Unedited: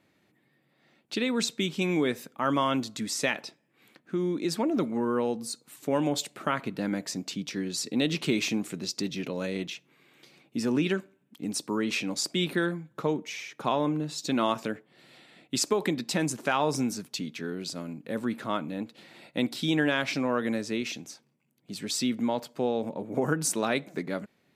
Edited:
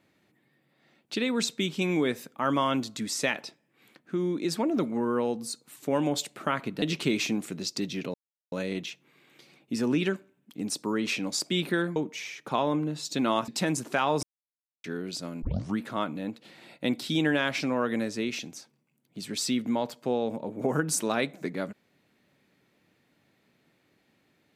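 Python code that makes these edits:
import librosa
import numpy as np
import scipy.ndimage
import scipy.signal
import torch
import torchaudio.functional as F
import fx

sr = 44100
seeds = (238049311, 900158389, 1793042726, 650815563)

y = fx.edit(x, sr, fx.cut(start_s=6.82, length_s=1.22),
    fx.insert_silence(at_s=9.36, length_s=0.38),
    fx.cut(start_s=12.8, length_s=0.29),
    fx.cut(start_s=14.61, length_s=1.4),
    fx.silence(start_s=16.76, length_s=0.61),
    fx.tape_start(start_s=17.95, length_s=0.36), tone=tone)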